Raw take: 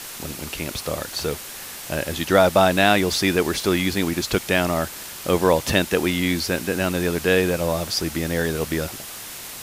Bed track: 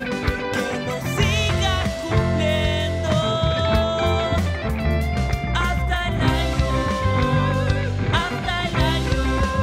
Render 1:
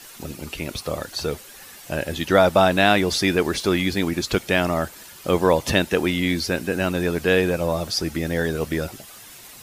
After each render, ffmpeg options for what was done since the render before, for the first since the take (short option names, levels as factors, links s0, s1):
-af "afftdn=nr=10:nf=-36"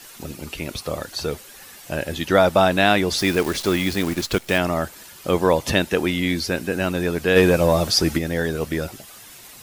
-filter_complex "[0:a]asettb=1/sr,asplit=3[s0][s1][s2];[s0]atrim=end=3.184[s3];[s1]atrim=start=3.18:end=4.58,asetpts=PTS-STARTPTS,afade=t=in:d=0.004:c=qsin,afade=t=out:st=1.396:d=0.004:c=qsin,acrusher=bits=6:dc=4:mix=0:aa=0.000001[s4];[s2]atrim=start=4.576[s5];[s3][s4]acrossfade=d=0.004:c1=hsin:c2=qsin[s6];[s6][s5]acrossfade=d=0.004:c1=qsin:c2=hsin,asplit=3[s7][s8][s9];[s7]afade=t=out:st=7.35:d=0.02[s10];[s8]acontrast=59,afade=t=in:st=7.35:d=0.02,afade=t=out:st=8.17:d=0.02[s11];[s9]afade=t=in:st=8.17:d=0.02[s12];[s10][s11][s12]amix=inputs=3:normalize=0"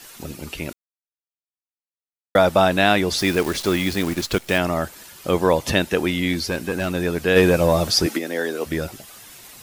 -filter_complex "[0:a]asettb=1/sr,asplit=3[s0][s1][s2];[s0]atrim=end=6.334[s3];[s1]atrim=start=6.33:end=6.94,asetpts=PTS-STARTPTS,afade=t=in:d=0.004:c=qsin,afade=t=out:st=0.606:d=0.004:c=qsin,asoftclip=type=hard:threshold=0.141[s4];[s2]atrim=start=6.936[s5];[s3][s4]acrossfade=d=0.004:c1=hsin:c2=qsin[s6];[s6][s5]acrossfade=d=0.004:c1=qsin:c2=hsin,asettb=1/sr,asplit=3[s7][s8][s9];[s7]atrim=end=8.064[s10];[s8]atrim=start=8.06:end=8.66,asetpts=PTS-STARTPTS,afade=t=in:d=0.004:c=qsin,afade=t=out:st=0.596:d=0.004:c=qsin,highpass=f=250:w=0.5412,highpass=f=250:w=1.3066[s11];[s9]atrim=start=8.656[s12];[s10][s11]acrossfade=d=0.004:c1=hsin:c2=qsin[s13];[s13][s12]acrossfade=d=0.004:c1=qsin:c2=hsin,asplit=3[s14][s15][s16];[s14]atrim=end=0.73,asetpts=PTS-STARTPTS,afade=t=out:st=0.726:d=0.004:c=hsin[s17];[s15]atrim=start=0.73:end=2.35,asetpts=PTS-STARTPTS,volume=0[s18];[s16]atrim=start=2.35,asetpts=PTS-STARTPTS,afade=t=in:d=0.004:c=hsin[s19];[s17][s18][s19]concat=n=3:v=0:a=1"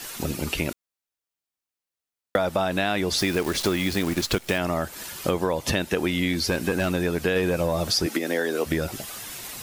-filter_complex "[0:a]asplit=2[s0][s1];[s1]alimiter=limit=0.376:level=0:latency=1,volume=1[s2];[s0][s2]amix=inputs=2:normalize=0,acompressor=threshold=0.0891:ratio=6"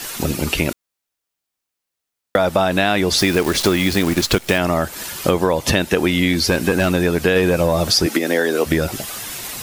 -af "volume=2.37,alimiter=limit=0.891:level=0:latency=1"